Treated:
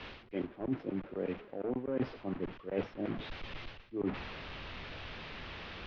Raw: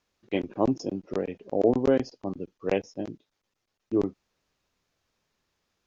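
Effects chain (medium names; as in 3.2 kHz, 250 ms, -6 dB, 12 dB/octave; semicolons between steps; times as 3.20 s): one-bit delta coder 32 kbps, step -37.5 dBFS; low-pass 3.1 kHz 24 dB/octave; reverse; compression 12:1, threshold -36 dBFS, peak gain reduction 19 dB; reverse; three bands expanded up and down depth 70%; trim +4 dB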